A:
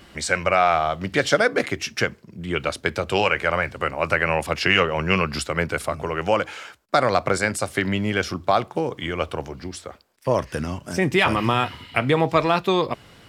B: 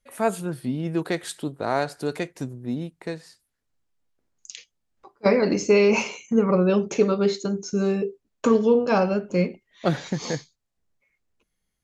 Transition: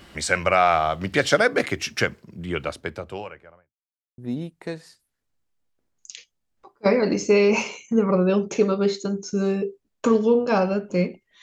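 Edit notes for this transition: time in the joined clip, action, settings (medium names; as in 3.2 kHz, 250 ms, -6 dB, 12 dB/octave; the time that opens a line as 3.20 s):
A
2.08–3.75 s: studio fade out
3.75–4.18 s: mute
4.18 s: go over to B from 2.58 s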